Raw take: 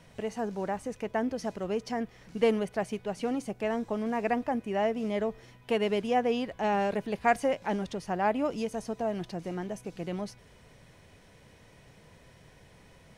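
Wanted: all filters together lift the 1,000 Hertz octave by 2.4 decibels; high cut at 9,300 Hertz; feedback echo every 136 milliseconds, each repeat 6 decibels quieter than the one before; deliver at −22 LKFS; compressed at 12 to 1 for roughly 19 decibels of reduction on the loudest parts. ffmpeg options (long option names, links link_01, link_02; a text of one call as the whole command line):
ffmpeg -i in.wav -af "lowpass=9300,equalizer=frequency=1000:width_type=o:gain=3.5,acompressor=threshold=-38dB:ratio=12,aecho=1:1:136|272|408|544|680|816:0.501|0.251|0.125|0.0626|0.0313|0.0157,volume=20dB" out.wav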